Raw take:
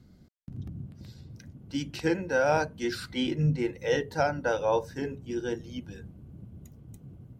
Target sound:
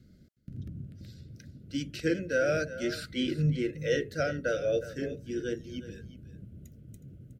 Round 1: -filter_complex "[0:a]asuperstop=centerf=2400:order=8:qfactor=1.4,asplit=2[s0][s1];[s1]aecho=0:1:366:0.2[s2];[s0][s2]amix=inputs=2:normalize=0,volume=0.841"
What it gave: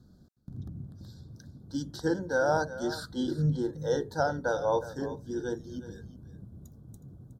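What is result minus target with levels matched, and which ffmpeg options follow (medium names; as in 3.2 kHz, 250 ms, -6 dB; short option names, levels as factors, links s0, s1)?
1 kHz band +9.5 dB
-filter_complex "[0:a]asuperstop=centerf=920:order=8:qfactor=1.4,asplit=2[s0][s1];[s1]aecho=0:1:366:0.2[s2];[s0][s2]amix=inputs=2:normalize=0,volume=0.841"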